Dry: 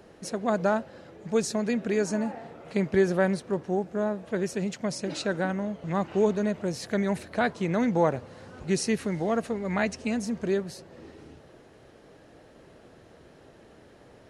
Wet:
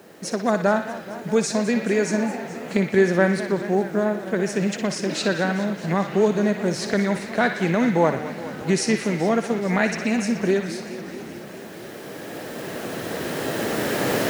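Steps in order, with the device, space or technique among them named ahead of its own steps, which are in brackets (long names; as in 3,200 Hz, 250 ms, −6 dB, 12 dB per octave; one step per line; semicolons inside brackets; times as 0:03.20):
Chebyshev band-pass filter 170–8,900 Hz, order 2
parametric band 1,800 Hz +3 dB 0.77 octaves
cheap recorder with automatic gain (white noise bed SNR 36 dB; camcorder AGC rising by 7.3 dB per second)
feedback echo with a band-pass in the loop 60 ms, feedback 77%, band-pass 2,700 Hz, level −6 dB
feedback echo with a swinging delay time 212 ms, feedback 78%, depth 206 cents, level −15 dB
level +5 dB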